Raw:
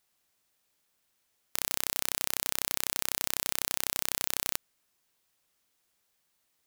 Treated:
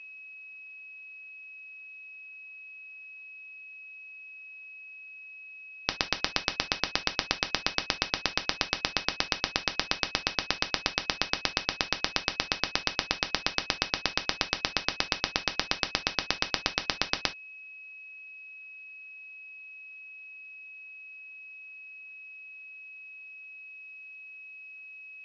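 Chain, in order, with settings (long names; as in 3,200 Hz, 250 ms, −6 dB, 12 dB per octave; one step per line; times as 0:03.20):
steady tone 9,700 Hz −44 dBFS
change of speed 0.264×
reverb whose tail is shaped and stops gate 90 ms falling, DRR 7 dB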